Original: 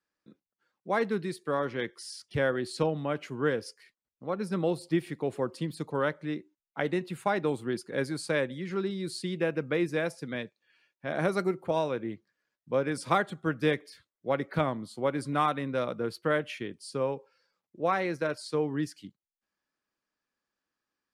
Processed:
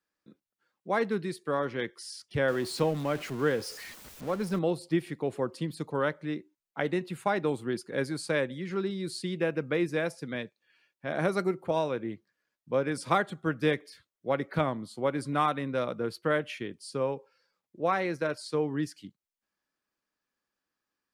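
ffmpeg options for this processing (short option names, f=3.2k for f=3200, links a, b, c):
-filter_complex "[0:a]asettb=1/sr,asplit=3[a][b][c];[a]atrim=end=2.484[d];[b]atrim=start=2.48:end=4.59,asetpts=PTS-STARTPTS,afade=t=in:d=0.004:c=qsin,afade=t=out:st=2.106:d=0.004:c=qsin,aeval=exprs='val(0)+0.5*0.0112*sgn(val(0))':c=same[e];[c]atrim=start=4.586[f];[d][e]acrossfade=d=0.004:c1=hsin:c2=qsin[g];[g][f]acrossfade=d=0.004:c1=qsin:c2=hsin"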